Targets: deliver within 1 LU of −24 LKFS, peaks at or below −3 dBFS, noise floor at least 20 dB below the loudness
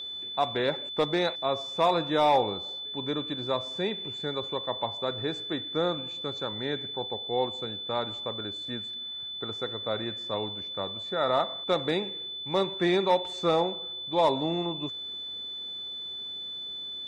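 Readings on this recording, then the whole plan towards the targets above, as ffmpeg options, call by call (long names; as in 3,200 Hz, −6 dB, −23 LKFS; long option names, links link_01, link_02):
interfering tone 3,500 Hz; level of the tone −35 dBFS; integrated loudness −29.5 LKFS; sample peak −13.5 dBFS; target loudness −24.0 LKFS
→ -af "bandreject=frequency=3500:width=30"
-af "volume=5.5dB"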